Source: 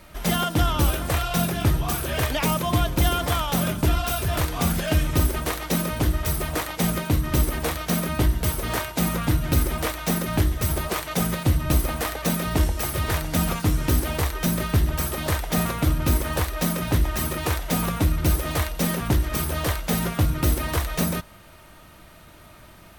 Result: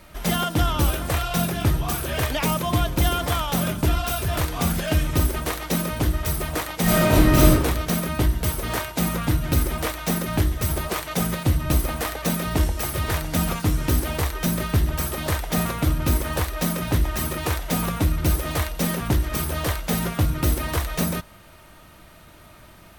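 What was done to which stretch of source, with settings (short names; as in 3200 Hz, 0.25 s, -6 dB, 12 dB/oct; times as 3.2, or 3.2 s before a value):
6.83–7.49 reverb throw, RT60 0.97 s, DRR -8.5 dB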